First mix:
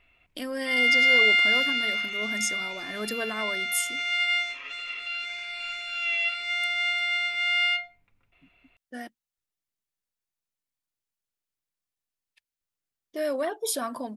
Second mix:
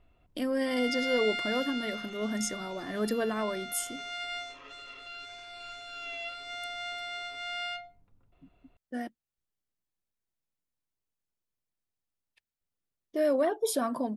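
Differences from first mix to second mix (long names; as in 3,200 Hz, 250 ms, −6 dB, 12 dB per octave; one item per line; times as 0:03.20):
background: add parametric band 2,300 Hz −14.5 dB 0.77 octaves
master: add tilt shelving filter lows +5 dB, about 940 Hz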